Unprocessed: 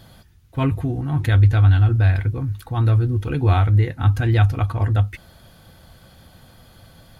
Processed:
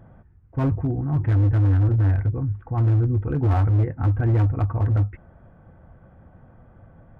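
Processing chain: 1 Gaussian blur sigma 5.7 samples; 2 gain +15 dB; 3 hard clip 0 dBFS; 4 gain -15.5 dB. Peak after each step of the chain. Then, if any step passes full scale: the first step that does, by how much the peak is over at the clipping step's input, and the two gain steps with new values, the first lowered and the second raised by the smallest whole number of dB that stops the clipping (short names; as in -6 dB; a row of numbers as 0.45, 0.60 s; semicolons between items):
-5.5, +9.5, 0.0, -15.5 dBFS; step 2, 9.5 dB; step 2 +5 dB, step 4 -5.5 dB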